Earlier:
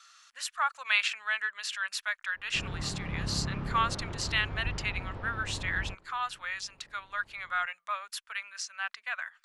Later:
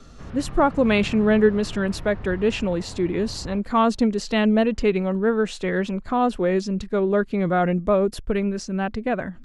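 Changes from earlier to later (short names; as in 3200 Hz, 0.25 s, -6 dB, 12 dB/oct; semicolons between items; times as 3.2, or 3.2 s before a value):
speech: remove inverse Chebyshev high-pass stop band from 370 Hz, stop band 60 dB; background: entry -2.35 s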